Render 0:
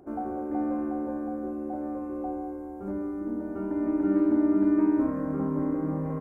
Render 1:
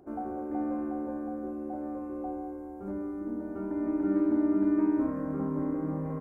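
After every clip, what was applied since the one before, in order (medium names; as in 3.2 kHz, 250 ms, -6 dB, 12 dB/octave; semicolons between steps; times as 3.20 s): de-hum 281 Hz, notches 32; trim -3 dB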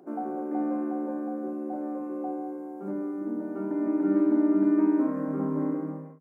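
fade out at the end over 0.53 s; elliptic high-pass 160 Hz; trim +3.5 dB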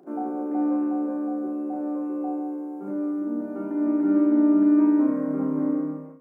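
flutter echo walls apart 5.8 m, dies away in 0.34 s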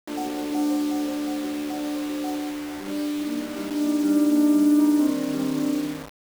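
word length cut 6-bit, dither none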